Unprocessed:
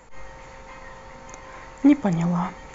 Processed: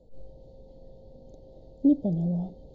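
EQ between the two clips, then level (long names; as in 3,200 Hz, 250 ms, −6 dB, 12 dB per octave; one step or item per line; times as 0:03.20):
elliptic band-stop filter 620–4,000 Hz, stop band 40 dB
high-frequency loss of the air 370 metres
−3.5 dB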